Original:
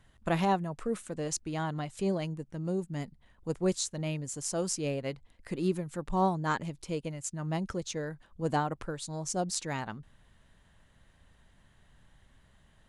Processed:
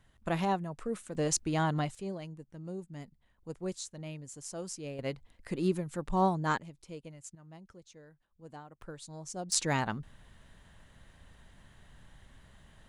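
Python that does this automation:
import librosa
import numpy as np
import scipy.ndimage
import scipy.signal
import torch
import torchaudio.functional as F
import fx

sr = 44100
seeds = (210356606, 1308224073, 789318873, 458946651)

y = fx.gain(x, sr, db=fx.steps((0.0, -3.0), (1.15, 4.0), (1.95, -8.5), (4.99, 0.0), (6.58, -10.5), (7.35, -19.0), (8.82, -8.0), (9.52, 5.0)))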